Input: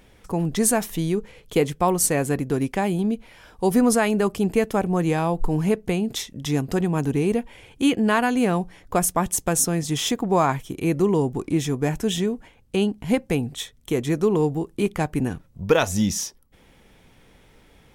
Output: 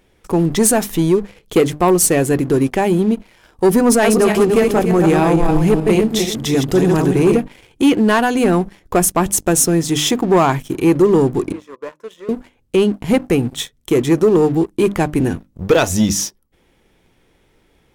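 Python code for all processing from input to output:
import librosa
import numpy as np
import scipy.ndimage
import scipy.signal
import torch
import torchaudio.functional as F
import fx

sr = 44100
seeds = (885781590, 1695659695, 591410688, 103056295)

y = fx.chain(x, sr, fx.reverse_delay_fb(ms=148, feedback_pct=45, wet_db=-4.0),
    fx.overload_stage(gain_db=12.0), at=(3.88, 7.37))
y = fx.chain(y, sr, fx.double_bandpass(hz=760.0, octaves=0.93),
    fx.tilt_eq(slope=3.0), at=(11.52, 12.29))
y = fx.peak_eq(y, sr, hz=350.0, db=6.0, octaves=0.43)
y = fx.hum_notches(y, sr, base_hz=50, count=6)
y = fx.leveller(y, sr, passes=2)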